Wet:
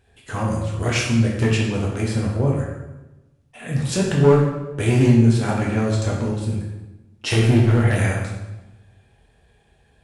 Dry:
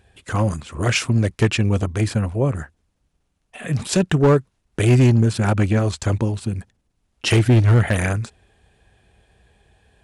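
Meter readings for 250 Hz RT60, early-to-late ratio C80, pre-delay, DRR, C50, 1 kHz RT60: 1.3 s, 5.0 dB, 7 ms, −3.5 dB, 2.0 dB, 1.0 s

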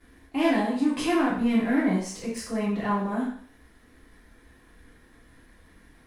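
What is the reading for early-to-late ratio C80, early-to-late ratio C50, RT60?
7.5 dB, 3.5 dB, 0.55 s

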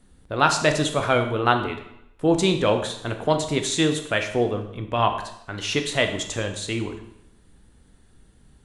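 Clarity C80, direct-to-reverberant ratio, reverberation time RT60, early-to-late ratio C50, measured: 11.5 dB, 5.0 dB, 0.80 s, 9.0 dB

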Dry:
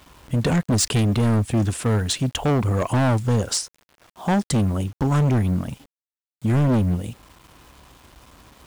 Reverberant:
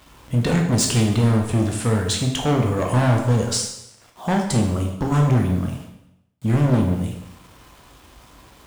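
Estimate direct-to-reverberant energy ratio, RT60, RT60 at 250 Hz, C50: 1.0 dB, 0.80 s, 0.80 s, 5.0 dB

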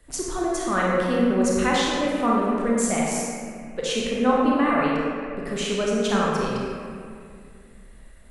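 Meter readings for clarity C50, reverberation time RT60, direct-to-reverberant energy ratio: −2.5 dB, 2.3 s, −4.5 dB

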